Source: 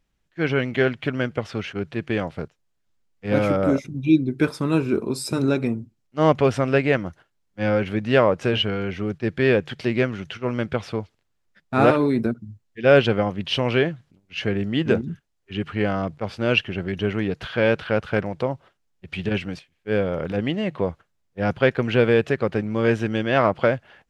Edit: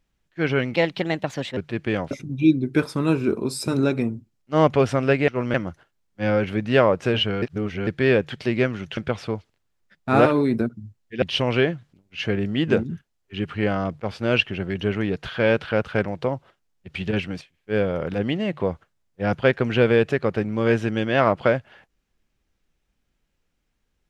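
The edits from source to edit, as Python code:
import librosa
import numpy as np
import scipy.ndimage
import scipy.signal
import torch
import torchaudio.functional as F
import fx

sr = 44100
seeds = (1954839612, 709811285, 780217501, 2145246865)

y = fx.edit(x, sr, fx.speed_span(start_s=0.75, length_s=1.05, speed=1.28),
    fx.cut(start_s=2.34, length_s=1.42),
    fx.reverse_span(start_s=8.81, length_s=0.45),
    fx.move(start_s=10.36, length_s=0.26, to_s=6.93),
    fx.cut(start_s=12.87, length_s=0.53), tone=tone)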